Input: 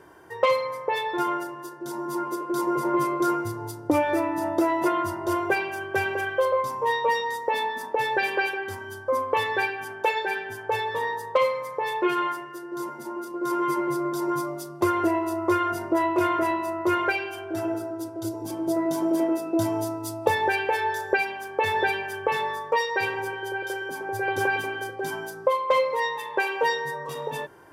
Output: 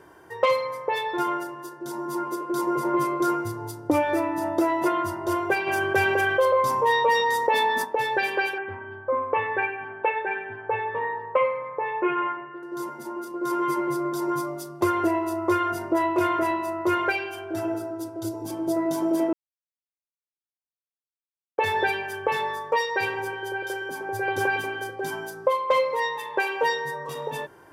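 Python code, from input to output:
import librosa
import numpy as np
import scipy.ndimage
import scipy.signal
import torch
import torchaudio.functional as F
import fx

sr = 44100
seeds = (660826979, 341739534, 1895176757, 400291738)

y = fx.env_flatten(x, sr, amount_pct=50, at=(5.66, 7.83), fade=0.02)
y = fx.cheby1_lowpass(y, sr, hz=2600.0, order=4, at=(8.58, 12.63))
y = fx.edit(y, sr, fx.silence(start_s=19.33, length_s=2.25), tone=tone)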